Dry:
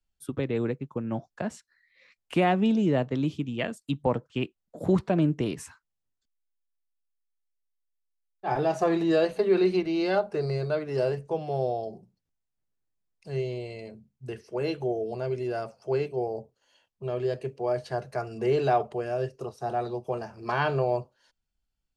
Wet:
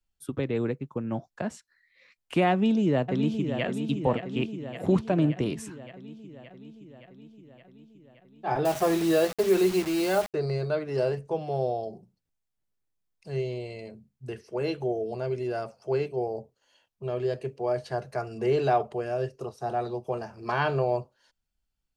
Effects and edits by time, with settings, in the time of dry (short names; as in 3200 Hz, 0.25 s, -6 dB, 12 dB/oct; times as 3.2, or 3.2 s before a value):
2.51–3.64 echo throw 0.57 s, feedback 70%, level -7.5 dB
8.65–10.34 requantised 6-bit, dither none